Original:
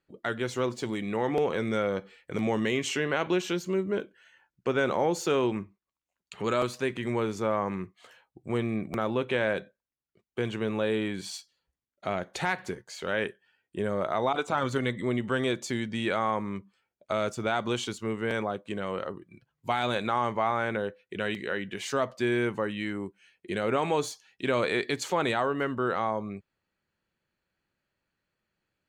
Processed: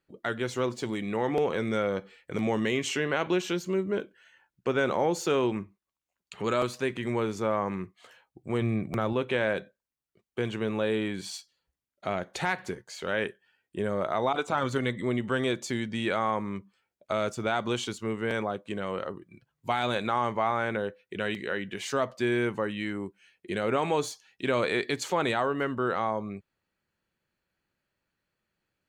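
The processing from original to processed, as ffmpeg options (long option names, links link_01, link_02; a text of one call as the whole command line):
ffmpeg -i in.wav -filter_complex "[0:a]asettb=1/sr,asplit=3[link_01][link_02][link_03];[link_01]atrim=end=8.614[link_04];[link_02]atrim=start=8.61:end=9.13,asetpts=PTS-STARTPTS,afade=type=in:duration=0.004:curve=qsin,afade=type=out:start_time=0.516:duration=0.004:curve=qsin,equalizer=frequency=120:width_type=o:width=0.77:gain=7[link_05];[link_03]atrim=start=9.126[link_06];[link_04][link_05]acrossfade=duration=0.004:curve1=hsin:curve2=qsin[link_07];[link_07][link_06]acrossfade=duration=0.004:curve1=qsin:curve2=hsin" out.wav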